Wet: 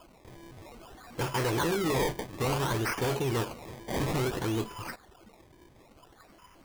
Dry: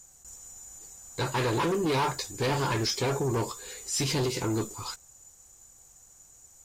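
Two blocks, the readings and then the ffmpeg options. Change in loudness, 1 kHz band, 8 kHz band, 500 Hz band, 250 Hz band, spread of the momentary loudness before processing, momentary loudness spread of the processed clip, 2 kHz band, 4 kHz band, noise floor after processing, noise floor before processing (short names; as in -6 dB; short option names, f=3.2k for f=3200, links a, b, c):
-1.5 dB, -2.0 dB, -7.0 dB, -1.0 dB, -1.0 dB, 17 LU, 21 LU, 0.0 dB, -4.5 dB, -58 dBFS, -56 dBFS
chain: -af "acrusher=samples=22:mix=1:aa=0.000001:lfo=1:lforange=22:lforate=0.58,volume=-1.5dB" -ar 44100 -c:a libvorbis -b:a 192k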